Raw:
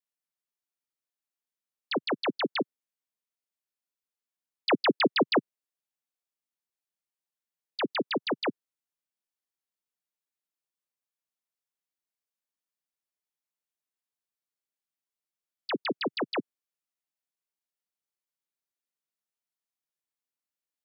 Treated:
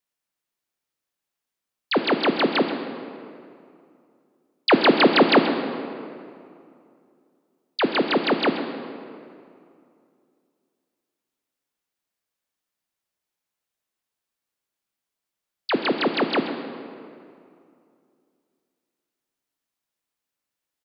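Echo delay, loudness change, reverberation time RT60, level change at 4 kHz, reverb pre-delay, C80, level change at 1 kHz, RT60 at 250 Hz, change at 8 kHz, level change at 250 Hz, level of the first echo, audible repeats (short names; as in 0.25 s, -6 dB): 0.131 s, +8.0 dB, 2.5 s, +8.0 dB, 11 ms, 7.5 dB, +9.5 dB, 2.6 s, n/a, +10.0 dB, -14.0 dB, 1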